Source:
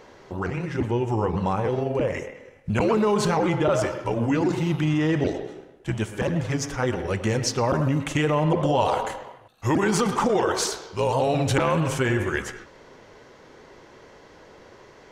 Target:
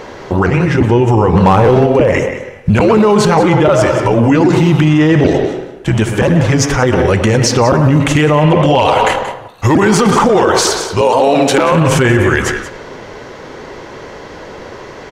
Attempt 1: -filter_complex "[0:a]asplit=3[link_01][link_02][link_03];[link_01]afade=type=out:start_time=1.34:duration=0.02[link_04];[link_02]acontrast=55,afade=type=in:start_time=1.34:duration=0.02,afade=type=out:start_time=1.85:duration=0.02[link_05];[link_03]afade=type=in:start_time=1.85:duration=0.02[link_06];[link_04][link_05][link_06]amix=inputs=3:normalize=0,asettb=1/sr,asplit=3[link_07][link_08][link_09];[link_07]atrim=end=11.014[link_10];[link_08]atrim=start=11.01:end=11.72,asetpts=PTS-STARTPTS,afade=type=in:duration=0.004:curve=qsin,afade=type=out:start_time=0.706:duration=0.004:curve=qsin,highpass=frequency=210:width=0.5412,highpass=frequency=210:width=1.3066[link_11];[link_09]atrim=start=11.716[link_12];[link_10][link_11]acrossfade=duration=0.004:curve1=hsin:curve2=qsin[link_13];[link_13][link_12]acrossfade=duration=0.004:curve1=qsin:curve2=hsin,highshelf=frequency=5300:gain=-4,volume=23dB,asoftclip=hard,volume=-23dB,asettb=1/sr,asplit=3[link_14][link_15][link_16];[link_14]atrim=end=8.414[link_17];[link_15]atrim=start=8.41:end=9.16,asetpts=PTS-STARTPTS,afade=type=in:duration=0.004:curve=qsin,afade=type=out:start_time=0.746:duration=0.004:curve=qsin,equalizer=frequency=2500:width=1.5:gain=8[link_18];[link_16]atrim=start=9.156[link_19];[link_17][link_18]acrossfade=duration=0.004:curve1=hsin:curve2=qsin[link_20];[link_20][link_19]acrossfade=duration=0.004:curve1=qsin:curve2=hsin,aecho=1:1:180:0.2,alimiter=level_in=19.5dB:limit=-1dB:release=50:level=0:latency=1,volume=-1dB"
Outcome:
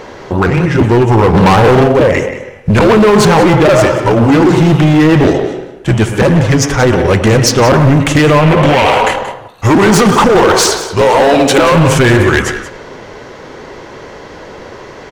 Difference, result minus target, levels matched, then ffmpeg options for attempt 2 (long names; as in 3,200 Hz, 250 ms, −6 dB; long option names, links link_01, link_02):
gain into a clipping stage and back: distortion +16 dB
-filter_complex "[0:a]asplit=3[link_01][link_02][link_03];[link_01]afade=type=out:start_time=1.34:duration=0.02[link_04];[link_02]acontrast=55,afade=type=in:start_time=1.34:duration=0.02,afade=type=out:start_time=1.85:duration=0.02[link_05];[link_03]afade=type=in:start_time=1.85:duration=0.02[link_06];[link_04][link_05][link_06]amix=inputs=3:normalize=0,asettb=1/sr,asplit=3[link_07][link_08][link_09];[link_07]atrim=end=11.014[link_10];[link_08]atrim=start=11.01:end=11.72,asetpts=PTS-STARTPTS,afade=type=in:duration=0.004:curve=qsin,afade=type=out:start_time=0.706:duration=0.004:curve=qsin,highpass=frequency=210:width=0.5412,highpass=frequency=210:width=1.3066[link_11];[link_09]atrim=start=11.716[link_12];[link_10][link_11]acrossfade=duration=0.004:curve1=hsin:curve2=qsin[link_13];[link_13][link_12]acrossfade=duration=0.004:curve1=qsin:curve2=hsin,highshelf=frequency=5300:gain=-4,volume=13.5dB,asoftclip=hard,volume=-13.5dB,asettb=1/sr,asplit=3[link_14][link_15][link_16];[link_14]atrim=end=8.414[link_17];[link_15]atrim=start=8.41:end=9.16,asetpts=PTS-STARTPTS,afade=type=in:duration=0.004:curve=qsin,afade=type=out:start_time=0.746:duration=0.004:curve=qsin,equalizer=frequency=2500:width=1.5:gain=8[link_18];[link_16]atrim=start=9.156[link_19];[link_17][link_18]acrossfade=duration=0.004:curve1=hsin:curve2=qsin[link_20];[link_20][link_19]acrossfade=duration=0.004:curve1=qsin:curve2=hsin,aecho=1:1:180:0.2,alimiter=level_in=19.5dB:limit=-1dB:release=50:level=0:latency=1,volume=-1dB"